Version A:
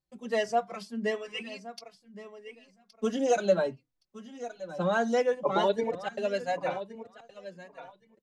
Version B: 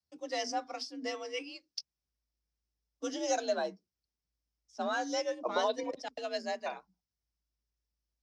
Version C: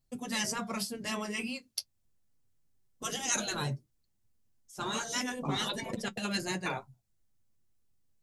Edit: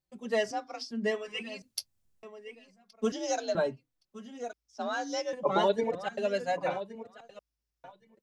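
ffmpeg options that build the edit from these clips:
-filter_complex "[1:a]asplit=4[s0][s1][s2][s3];[0:a]asplit=6[s4][s5][s6][s7][s8][s9];[s4]atrim=end=0.512[s10];[s0]atrim=start=0.508:end=0.912[s11];[s5]atrim=start=0.908:end=1.622[s12];[2:a]atrim=start=1.618:end=2.232[s13];[s6]atrim=start=2.228:end=3.122[s14];[s1]atrim=start=3.118:end=3.552[s15];[s7]atrim=start=3.548:end=4.532[s16];[s2]atrim=start=4.528:end=5.332[s17];[s8]atrim=start=5.328:end=7.392[s18];[s3]atrim=start=7.388:end=7.842[s19];[s9]atrim=start=7.838[s20];[s10][s11]acrossfade=d=0.004:c1=hsin:c2=hsin[s21];[s21][s12]acrossfade=d=0.004:c1=hsin:c2=hsin[s22];[s22][s13]acrossfade=d=0.004:c1=hsin:c2=hsin[s23];[s23][s14]acrossfade=d=0.004:c1=hsin:c2=hsin[s24];[s24][s15]acrossfade=d=0.004:c1=hsin:c2=hsin[s25];[s25][s16]acrossfade=d=0.004:c1=hsin:c2=hsin[s26];[s26][s17]acrossfade=d=0.004:c1=hsin:c2=hsin[s27];[s27][s18]acrossfade=d=0.004:c1=hsin:c2=hsin[s28];[s28][s19]acrossfade=d=0.004:c1=hsin:c2=hsin[s29];[s29][s20]acrossfade=d=0.004:c1=hsin:c2=hsin"

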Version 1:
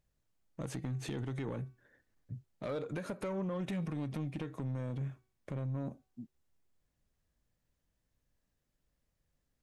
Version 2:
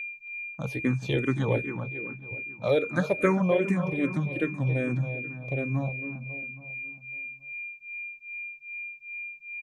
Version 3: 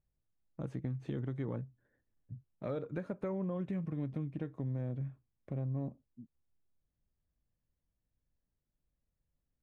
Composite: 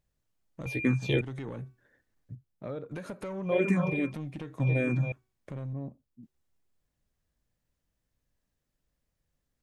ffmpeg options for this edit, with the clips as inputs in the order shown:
-filter_complex "[1:a]asplit=3[s0][s1][s2];[2:a]asplit=2[s3][s4];[0:a]asplit=6[s5][s6][s7][s8][s9][s10];[s5]atrim=end=0.662[s11];[s0]atrim=start=0.658:end=1.212[s12];[s6]atrim=start=1.208:end=2.352[s13];[s3]atrim=start=2.348:end=2.912[s14];[s7]atrim=start=2.908:end=3.6[s15];[s1]atrim=start=3.44:end=4.13[s16];[s8]atrim=start=3.97:end=4.602[s17];[s2]atrim=start=4.598:end=5.122[s18];[s9]atrim=start=5.118:end=5.732[s19];[s4]atrim=start=5.728:end=6.232[s20];[s10]atrim=start=6.228[s21];[s11][s12]acrossfade=d=0.004:c1=hsin:c2=hsin[s22];[s22][s13]acrossfade=d=0.004:c1=hsin:c2=hsin[s23];[s23][s14]acrossfade=d=0.004:c1=hsin:c2=hsin[s24];[s24][s15]acrossfade=d=0.004:c1=hsin:c2=hsin[s25];[s25][s16]acrossfade=d=0.16:c1=tri:c2=tri[s26];[s26][s17]acrossfade=d=0.16:c1=tri:c2=tri[s27];[s27][s18]acrossfade=d=0.004:c1=hsin:c2=hsin[s28];[s28][s19]acrossfade=d=0.004:c1=hsin:c2=hsin[s29];[s29][s20]acrossfade=d=0.004:c1=hsin:c2=hsin[s30];[s30][s21]acrossfade=d=0.004:c1=hsin:c2=hsin"

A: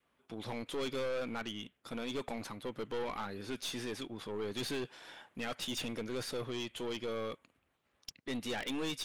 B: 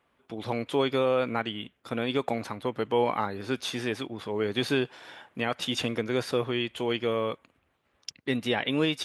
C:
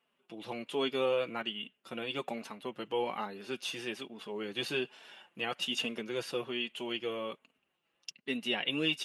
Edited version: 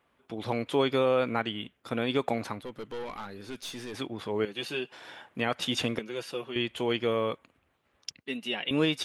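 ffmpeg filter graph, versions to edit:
-filter_complex "[2:a]asplit=3[s0][s1][s2];[1:a]asplit=5[s3][s4][s5][s6][s7];[s3]atrim=end=2.612[s8];[0:a]atrim=start=2.608:end=3.942[s9];[s4]atrim=start=3.938:end=4.452[s10];[s0]atrim=start=4.448:end=4.922[s11];[s5]atrim=start=4.918:end=5.992[s12];[s1]atrim=start=5.988:end=6.562[s13];[s6]atrim=start=6.558:end=8.232[s14];[s2]atrim=start=8.228:end=8.712[s15];[s7]atrim=start=8.708[s16];[s8][s9]acrossfade=d=0.004:c1=hsin:c2=hsin[s17];[s17][s10]acrossfade=d=0.004:c1=hsin:c2=hsin[s18];[s18][s11]acrossfade=d=0.004:c1=hsin:c2=hsin[s19];[s19][s12]acrossfade=d=0.004:c1=hsin:c2=hsin[s20];[s20][s13]acrossfade=d=0.004:c1=hsin:c2=hsin[s21];[s21][s14]acrossfade=d=0.004:c1=hsin:c2=hsin[s22];[s22][s15]acrossfade=d=0.004:c1=hsin:c2=hsin[s23];[s23][s16]acrossfade=d=0.004:c1=hsin:c2=hsin"

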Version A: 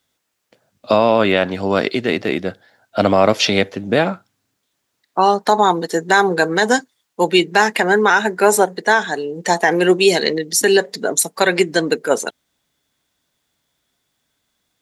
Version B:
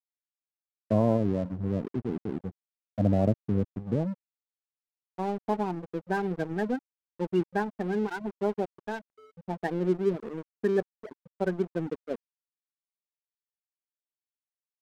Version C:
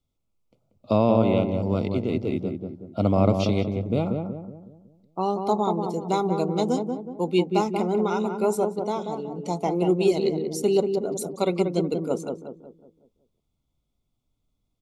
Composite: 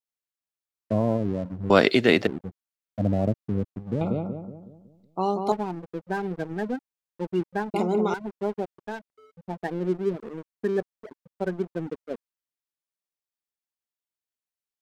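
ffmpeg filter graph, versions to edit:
-filter_complex "[2:a]asplit=2[s0][s1];[1:a]asplit=4[s2][s3][s4][s5];[s2]atrim=end=1.702[s6];[0:a]atrim=start=1.698:end=2.272[s7];[s3]atrim=start=2.268:end=4.012[s8];[s0]atrim=start=4.008:end=5.522[s9];[s4]atrim=start=5.518:end=7.742[s10];[s1]atrim=start=7.738:end=8.142[s11];[s5]atrim=start=8.138[s12];[s6][s7]acrossfade=d=0.004:c1=hsin:c2=hsin[s13];[s13][s8]acrossfade=d=0.004:c1=hsin:c2=hsin[s14];[s14][s9]acrossfade=d=0.004:c1=hsin:c2=hsin[s15];[s15][s10]acrossfade=d=0.004:c1=hsin:c2=hsin[s16];[s16][s11]acrossfade=d=0.004:c1=hsin:c2=hsin[s17];[s17][s12]acrossfade=d=0.004:c1=hsin:c2=hsin"

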